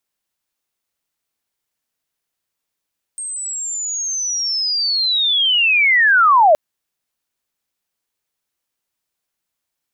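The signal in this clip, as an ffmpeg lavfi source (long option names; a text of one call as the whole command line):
ffmpeg -f lavfi -i "aevalsrc='pow(10,(-24+17*t/3.37)/20)*sin(2*PI*(8500*t-7920*t*t/(2*3.37)))':duration=3.37:sample_rate=44100" out.wav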